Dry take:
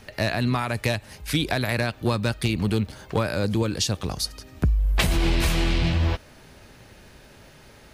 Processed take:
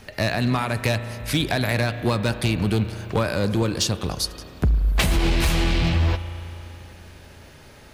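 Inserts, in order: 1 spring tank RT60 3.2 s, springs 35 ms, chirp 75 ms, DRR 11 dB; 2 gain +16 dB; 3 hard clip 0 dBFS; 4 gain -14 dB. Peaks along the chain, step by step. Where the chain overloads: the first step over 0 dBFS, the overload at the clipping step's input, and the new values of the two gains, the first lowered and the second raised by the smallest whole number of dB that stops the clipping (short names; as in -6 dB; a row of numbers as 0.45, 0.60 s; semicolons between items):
-11.0, +5.0, 0.0, -14.0 dBFS; step 2, 5.0 dB; step 2 +11 dB, step 4 -9 dB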